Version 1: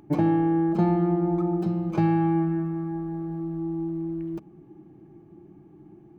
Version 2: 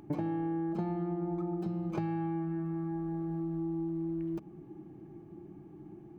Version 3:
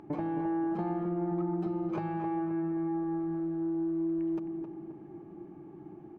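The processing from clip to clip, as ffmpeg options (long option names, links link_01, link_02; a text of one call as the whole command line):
ffmpeg -i in.wav -af "acompressor=threshold=-32dB:ratio=6" out.wav
ffmpeg -i in.wav -filter_complex "[0:a]asplit=2[link_01][link_02];[link_02]highpass=frequency=720:poles=1,volume=14dB,asoftclip=type=tanh:threshold=-22.5dB[link_03];[link_01][link_03]amix=inputs=2:normalize=0,lowpass=frequency=1100:poles=1,volume=-6dB,asplit=2[link_04][link_05];[link_05]adelay=264,lowpass=frequency=2000:poles=1,volume=-6.5dB,asplit=2[link_06][link_07];[link_07]adelay=264,lowpass=frequency=2000:poles=1,volume=0.49,asplit=2[link_08][link_09];[link_09]adelay=264,lowpass=frequency=2000:poles=1,volume=0.49,asplit=2[link_10][link_11];[link_11]adelay=264,lowpass=frequency=2000:poles=1,volume=0.49,asplit=2[link_12][link_13];[link_13]adelay=264,lowpass=frequency=2000:poles=1,volume=0.49,asplit=2[link_14][link_15];[link_15]adelay=264,lowpass=frequency=2000:poles=1,volume=0.49[link_16];[link_04][link_06][link_08][link_10][link_12][link_14][link_16]amix=inputs=7:normalize=0" out.wav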